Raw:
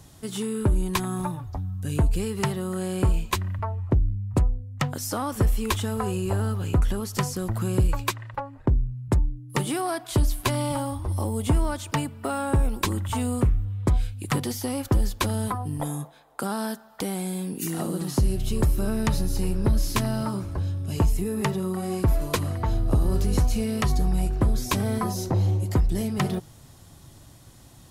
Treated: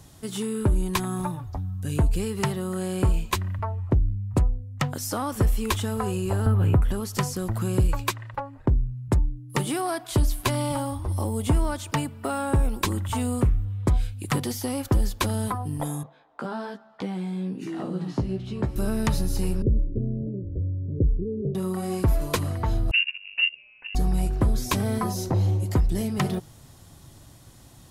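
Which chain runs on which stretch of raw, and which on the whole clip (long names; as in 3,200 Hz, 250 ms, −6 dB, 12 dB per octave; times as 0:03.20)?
0:06.46–0:06.91: parametric band 5,700 Hz −15 dB 1.3 octaves + notch filter 6,800 Hz, Q 25 + multiband upward and downward compressor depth 100%
0:16.03–0:18.76: low-shelf EQ 210 Hz +4.5 dB + chorus effect 1.2 Hz, delay 15 ms, depth 2.2 ms + band-pass filter 120–3,300 Hz
0:19.62–0:21.55: Butterworth low-pass 540 Hz 72 dB per octave + parametric band 200 Hz −4.5 dB 0.41 octaves
0:22.91–0:23.95: noise gate −19 dBFS, range −27 dB + voice inversion scrambler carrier 2,800 Hz
whole clip: no processing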